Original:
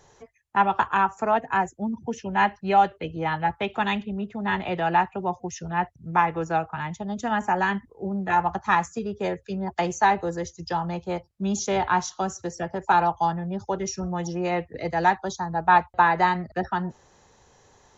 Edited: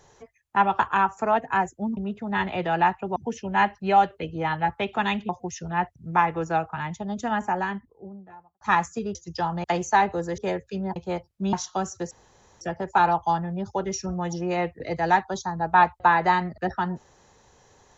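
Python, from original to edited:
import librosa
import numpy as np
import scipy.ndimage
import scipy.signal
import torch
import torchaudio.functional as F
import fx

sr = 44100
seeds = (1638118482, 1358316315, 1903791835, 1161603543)

y = fx.studio_fade_out(x, sr, start_s=7.09, length_s=1.52)
y = fx.edit(y, sr, fx.move(start_s=4.1, length_s=1.19, to_s=1.97),
    fx.swap(start_s=9.15, length_s=0.58, other_s=10.47, other_length_s=0.49),
    fx.cut(start_s=11.53, length_s=0.44),
    fx.insert_room_tone(at_s=12.55, length_s=0.5), tone=tone)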